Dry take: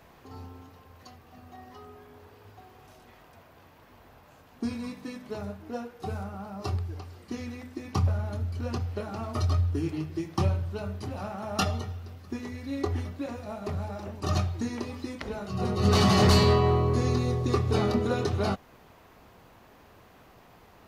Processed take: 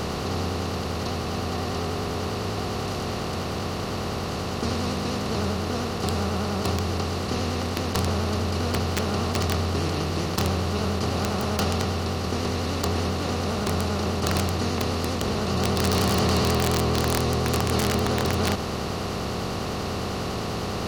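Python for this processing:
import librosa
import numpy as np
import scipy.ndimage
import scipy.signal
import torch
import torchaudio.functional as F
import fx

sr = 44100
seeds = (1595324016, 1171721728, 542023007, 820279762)

y = fx.bin_compress(x, sr, power=0.2)
y = (np.mod(10.0 ** (7.5 / 20.0) * y + 1.0, 2.0) - 1.0) / 10.0 ** (7.5 / 20.0)
y = fx.vibrato(y, sr, rate_hz=10.0, depth_cents=85.0)
y = y * 10.0 ** (-6.5 / 20.0)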